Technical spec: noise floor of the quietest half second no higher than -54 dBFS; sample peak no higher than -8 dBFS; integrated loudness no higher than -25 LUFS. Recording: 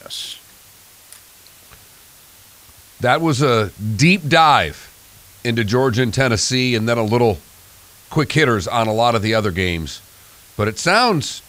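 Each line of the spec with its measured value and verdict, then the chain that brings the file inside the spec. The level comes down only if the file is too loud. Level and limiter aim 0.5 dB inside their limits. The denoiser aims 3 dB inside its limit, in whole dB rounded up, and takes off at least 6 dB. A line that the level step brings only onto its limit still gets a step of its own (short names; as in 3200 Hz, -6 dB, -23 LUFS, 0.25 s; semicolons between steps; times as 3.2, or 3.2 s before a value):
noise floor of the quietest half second -46 dBFS: fail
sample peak -2.0 dBFS: fail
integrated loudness -17.0 LUFS: fail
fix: gain -8.5 dB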